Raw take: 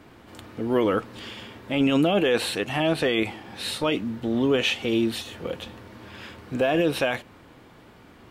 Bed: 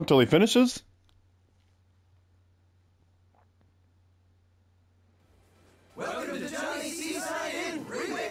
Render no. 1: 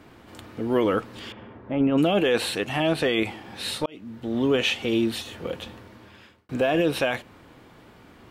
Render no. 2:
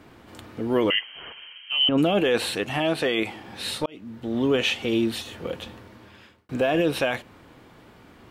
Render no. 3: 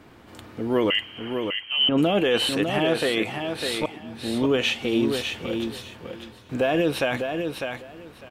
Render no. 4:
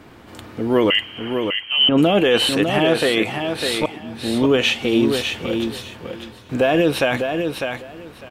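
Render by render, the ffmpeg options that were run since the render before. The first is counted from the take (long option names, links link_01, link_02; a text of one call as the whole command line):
ffmpeg -i in.wav -filter_complex "[0:a]asettb=1/sr,asplit=3[link_01][link_02][link_03];[link_01]atrim=end=1.324[link_04];[link_02]atrim=start=1.32:end=1.98,asetpts=PTS-STARTPTS,afade=type=in:duration=0.004:curve=qsin,afade=type=out:start_time=0.656:duration=0.004:curve=qsin,lowpass=1300[link_05];[link_03]atrim=start=1.976[link_06];[link_04][link_05]acrossfade=duration=0.004:curve1=hsin:curve2=qsin[link_07];[link_07][link_06]acrossfade=duration=0.004:curve1=qsin:curve2=hsin,asplit=3[link_08][link_09][link_10];[link_08]atrim=end=3.86,asetpts=PTS-STARTPTS,afade=type=out:start_time=3.856:duration=0.004:curve=hsin[link_11];[link_09]atrim=start=3.86:end=6.49,asetpts=PTS-STARTPTS,afade=type=in:duration=0.61,afade=type=out:start_time=1.84:duration=0.79[link_12];[link_10]atrim=start=6.49,asetpts=PTS-STARTPTS,afade=type=in:duration=0.004:curve=hsin[link_13];[link_11][link_12][link_13]concat=n=3:v=0:a=1" out.wav
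ffmpeg -i in.wav -filter_complex "[0:a]asettb=1/sr,asplit=3[link_01][link_02][link_03];[link_01]atrim=end=0.904[link_04];[link_02]atrim=start=0.9:end=1.89,asetpts=PTS-STARTPTS,afade=type=in:duration=0.004:curve=qsin,afade=type=out:start_time=0.986:duration=0.004:curve=qsin,lowpass=frequency=2800:width_type=q:width=0.5098,lowpass=frequency=2800:width_type=q:width=0.6013,lowpass=frequency=2800:width_type=q:width=0.9,lowpass=frequency=2800:width_type=q:width=2.563,afreqshift=-3300[link_05];[link_03]atrim=start=1.886[link_06];[link_04][link_05]acrossfade=duration=0.004:curve1=hsin:curve2=qsin[link_07];[link_07][link_06]acrossfade=duration=0.004:curve1=qsin:curve2=hsin,asettb=1/sr,asplit=3[link_08][link_09][link_10];[link_08]atrim=end=2.794[link_11];[link_09]atrim=start=2.79:end=3.36,asetpts=PTS-STARTPTS,afade=type=in:duration=0.004:curve=qsin,afade=type=out:start_time=0.566:duration=0.004:curve=qsin,lowshelf=frequency=140:gain=-9[link_12];[link_10]atrim=start=3.356[link_13];[link_11][link_12]acrossfade=duration=0.004:curve1=hsin:curve2=qsin[link_14];[link_14][link_13]acrossfade=duration=0.004:curve1=qsin:curve2=hsin" out.wav
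ffmpeg -i in.wav -af "aecho=1:1:601|1202|1803:0.501|0.0852|0.0145" out.wav
ffmpeg -i in.wav -af "volume=5.5dB" out.wav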